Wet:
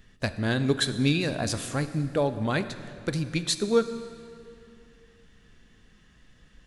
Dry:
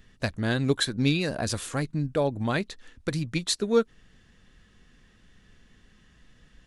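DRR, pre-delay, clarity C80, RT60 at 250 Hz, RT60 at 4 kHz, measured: 10.5 dB, 16 ms, 12.5 dB, 2.8 s, 2.0 s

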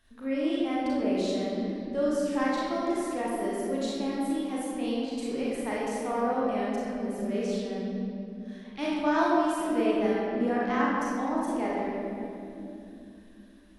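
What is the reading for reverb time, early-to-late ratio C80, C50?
2.8 s, -1.0 dB, -3.0 dB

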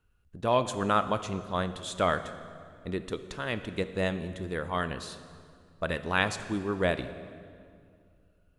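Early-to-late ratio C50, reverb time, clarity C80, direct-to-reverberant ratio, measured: 12.0 dB, 2.3 s, 13.0 dB, 11.0 dB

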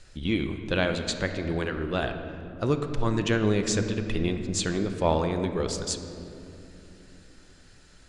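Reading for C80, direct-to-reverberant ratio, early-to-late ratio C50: 8.5 dB, 6.5 dB, 7.5 dB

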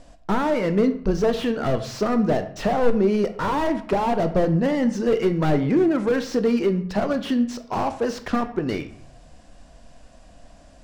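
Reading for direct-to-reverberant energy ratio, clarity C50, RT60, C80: 9.0 dB, 12.5 dB, 0.65 s, 15.0 dB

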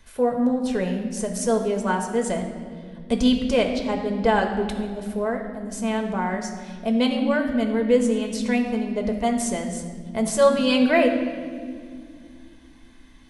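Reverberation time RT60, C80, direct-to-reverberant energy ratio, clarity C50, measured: 2.2 s, 8.0 dB, 2.5 dB, 6.5 dB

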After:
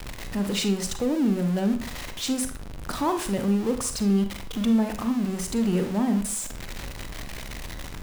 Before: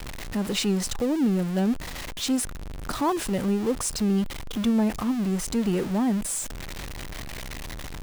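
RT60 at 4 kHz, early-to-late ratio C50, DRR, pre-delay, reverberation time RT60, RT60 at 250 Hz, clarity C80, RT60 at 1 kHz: 0.40 s, 9.5 dB, 7.0 dB, 34 ms, 0.50 s, 0.45 s, 14.0 dB, 0.50 s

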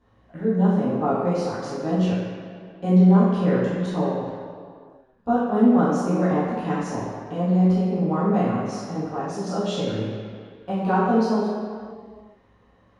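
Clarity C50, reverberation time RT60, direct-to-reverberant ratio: -1.5 dB, no single decay rate, -12.5 dB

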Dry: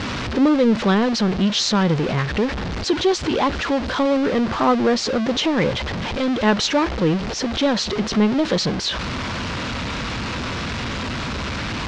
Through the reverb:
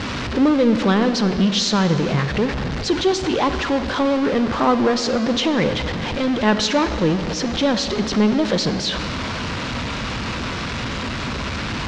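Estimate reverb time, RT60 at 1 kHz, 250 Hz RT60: 2.8 s, 2.7 s, 3.3 s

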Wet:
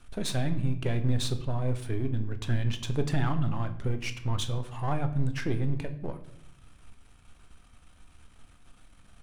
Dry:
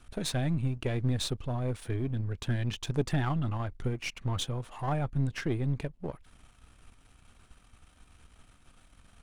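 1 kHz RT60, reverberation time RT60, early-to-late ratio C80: 0.60 s, 0.70 s, 15.5 dB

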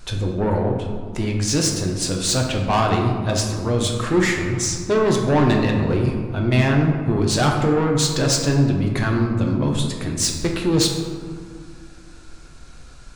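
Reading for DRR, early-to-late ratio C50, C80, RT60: 0.5 dB, 3.5 dB, 5.5 dB, 1.9 s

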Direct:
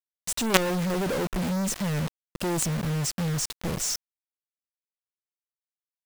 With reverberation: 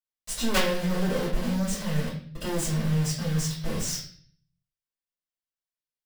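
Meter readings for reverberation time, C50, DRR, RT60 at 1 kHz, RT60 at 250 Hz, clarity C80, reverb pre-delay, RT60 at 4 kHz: 0.50 s, 4.5 dB, -11.5 dB, 0.45 s, 0.75 s, 8.5 dB, 3 ms, 0.55 s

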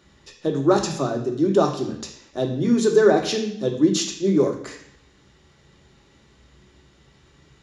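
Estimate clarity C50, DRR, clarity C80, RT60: 8.0 dB, 2.0 dB, 11.0 dB, 0.70 s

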